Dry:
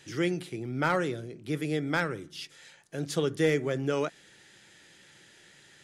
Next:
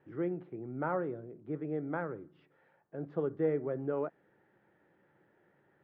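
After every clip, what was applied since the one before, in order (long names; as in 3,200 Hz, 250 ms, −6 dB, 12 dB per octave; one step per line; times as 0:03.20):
Bessel low-pass filter 740 Hz, order 4
spectral tilt +3 dB per octave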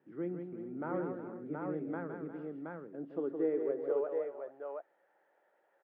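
on a send: multi-tap delay 164/356/427/723 ms −6.5/−13/−17/−3 dB
on the sum: high-pass filter sweep 210 Hz → 630 Hz, 0:02.82–0:04.44
level −7 dB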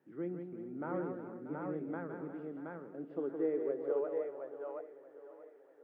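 feedback echo with a high-pass in the loop 634 ms, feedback 52%, high-pass 170 Hz, level −14 dB
level −1.5 dB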